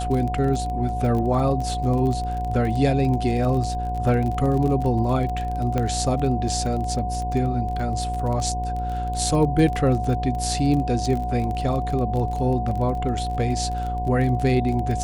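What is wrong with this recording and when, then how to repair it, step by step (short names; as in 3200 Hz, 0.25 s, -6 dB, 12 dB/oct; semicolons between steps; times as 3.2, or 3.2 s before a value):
buzz 60 Hz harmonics 17 -28 dBFS
crackle 26/s -27 dBFS
tone 730 Hz -27 dBFS
5.78 pop -12 dBFS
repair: de-click; de-hum 60 Hz, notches 17; notch 730 Hz, Q 30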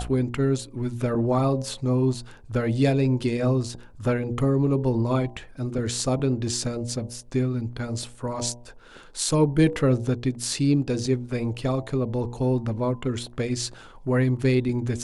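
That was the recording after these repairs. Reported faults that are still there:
none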